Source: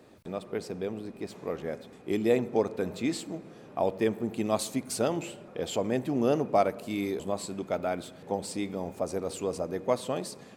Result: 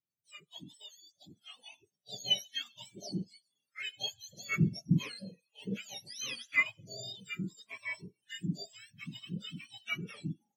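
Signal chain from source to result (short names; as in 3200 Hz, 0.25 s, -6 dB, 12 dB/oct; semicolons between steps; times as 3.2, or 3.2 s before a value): spectrum mirrored in octaves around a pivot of 1200 Hz; spectral noise reduction 13 dB; spectral expander 1.5:1; gain -1.5 dB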